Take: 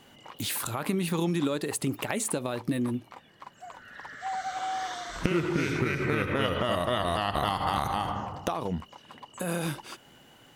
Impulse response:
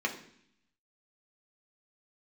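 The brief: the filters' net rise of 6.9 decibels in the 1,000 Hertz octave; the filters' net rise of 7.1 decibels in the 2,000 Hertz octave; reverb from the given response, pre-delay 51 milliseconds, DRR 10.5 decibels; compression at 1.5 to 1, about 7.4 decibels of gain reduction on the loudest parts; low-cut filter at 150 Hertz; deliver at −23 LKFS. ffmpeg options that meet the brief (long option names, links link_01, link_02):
-filter_complex "[0:a]highpass=150,equalizer=frequency=1000:width_type=o:gain=7.5,equalizer=frequency=2000:width_type=o:gain=6.5,acompressor=threshold=-38dB:ratio=1.5,asplit=2[link_01][link_02];[1:a]atrim=start_sample=2205,adelay=51[link_03];[link_02][link_03]afir=irnorm=-1:irlink=0,volume=-18dB[link_04];[link_01][link_04]amix=inputs=2:normalize=0,volume=9dB"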